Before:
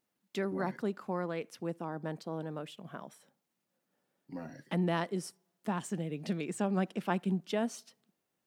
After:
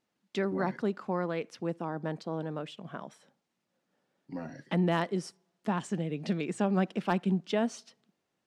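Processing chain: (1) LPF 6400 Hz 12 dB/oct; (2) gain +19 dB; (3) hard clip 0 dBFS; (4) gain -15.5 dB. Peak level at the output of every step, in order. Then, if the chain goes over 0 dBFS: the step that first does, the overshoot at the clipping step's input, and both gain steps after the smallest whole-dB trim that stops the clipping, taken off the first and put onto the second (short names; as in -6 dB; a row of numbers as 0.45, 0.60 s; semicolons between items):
-15.5, +3.5, 0.0, -15.5 dBFS; step 2, 3.5 dB; step 2 +15 dB, step 4 -11.5 dB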